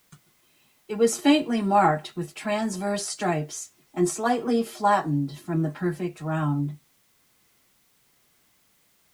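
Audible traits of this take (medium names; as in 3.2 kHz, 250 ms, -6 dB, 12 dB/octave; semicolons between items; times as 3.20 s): tremolo triangle 1.1 Hz, depth 30%; a quantiser's noise floor 12-bit, dither triangular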